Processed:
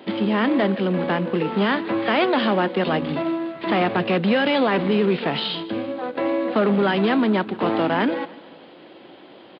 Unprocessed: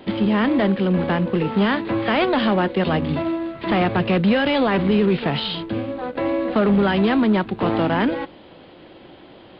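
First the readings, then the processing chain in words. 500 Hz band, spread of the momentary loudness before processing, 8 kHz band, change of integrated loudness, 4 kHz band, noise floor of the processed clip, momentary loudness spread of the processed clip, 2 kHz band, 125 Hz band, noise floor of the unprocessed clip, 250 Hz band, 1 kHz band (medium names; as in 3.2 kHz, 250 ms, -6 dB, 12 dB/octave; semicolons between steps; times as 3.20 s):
0.0 dB, 8 LU, no reading, -1.5 dB, 0.0 dB, -45 dBFS, 7 LU, 0.0 dB, -4.5 dB, -45 dBFS, -2.5 dB, 0.0 dB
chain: high-pass 210 Hz 12 dB/octave; feedback delay 152 ms, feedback 51%, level -20 dB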